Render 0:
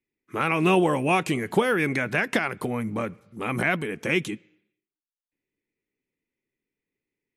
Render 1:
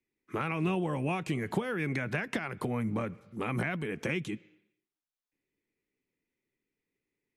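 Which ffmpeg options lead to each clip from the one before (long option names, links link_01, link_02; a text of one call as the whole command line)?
ffmpeg -i in.wav -filter_complex "[0:a]highshelf=frequency=8500:gain=-8,acrossover=split=150[link_01][link_02];[link_02]acompressor=threshold=-31dB:ratio=6[link_03];[link_01][link_03]amix=inputs=2:normalize=0" out.wav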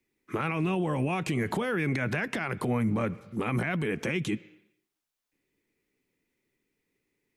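ffmpeg -i in.wav -af "alimiter=level_in=3.5dB:limit=-24dB:level=0:latency=1:release=45,volume=-3.5dB,volume=7.5dB" out.wav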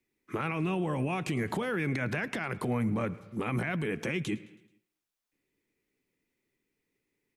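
ffmpeg -i in.wav -af "aecho=1:1:108|216|324|432:0.0841|0.0438|0.0228|0.0118,volume=-2.5dB" out.wav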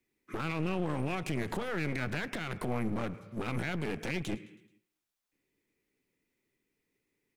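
ffmpeg -i in.wav -af "aeval=exprs='clip(val(0),-1,0.00794)':channel_layout=same" out.wav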